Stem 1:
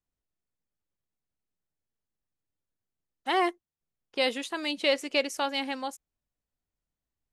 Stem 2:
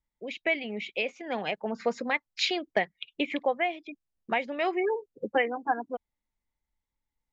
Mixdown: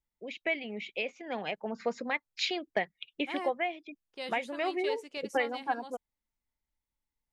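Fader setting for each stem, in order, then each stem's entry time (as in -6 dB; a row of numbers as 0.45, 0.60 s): -13.5, -4.0 dB; 0.00, 0.00 s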